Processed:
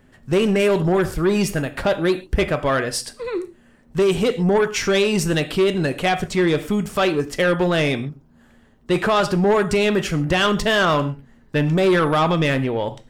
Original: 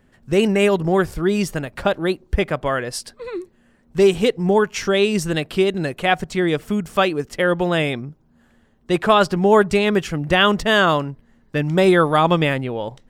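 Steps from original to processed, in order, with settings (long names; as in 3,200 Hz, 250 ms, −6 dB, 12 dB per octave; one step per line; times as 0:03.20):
brickwall limiter −9 dBFS, peak gain reduction 7.5 dB
reverb whose tail is shaped and stops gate 160 ms falling, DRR 10 dB
soft clipping −15 dBFS, distortion −14 dB
level +3.5 dB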